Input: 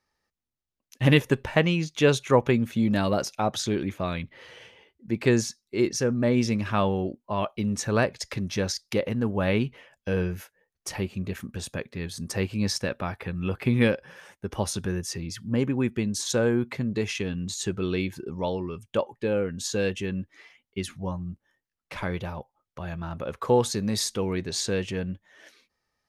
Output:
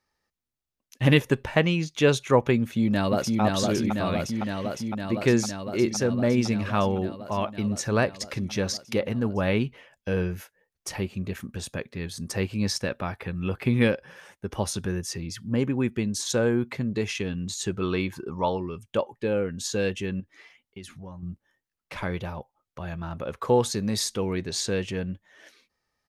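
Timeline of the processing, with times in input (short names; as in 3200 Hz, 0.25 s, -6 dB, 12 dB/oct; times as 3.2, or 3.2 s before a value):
2.6–3.41 echo throw 0.51 s, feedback 80%, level -2.5 dB
17.81–18.58 bell 1100 Hz +10.5 dB 0.84 oct
20.2–21.23 compressor 3:1, threshold -40 dBFS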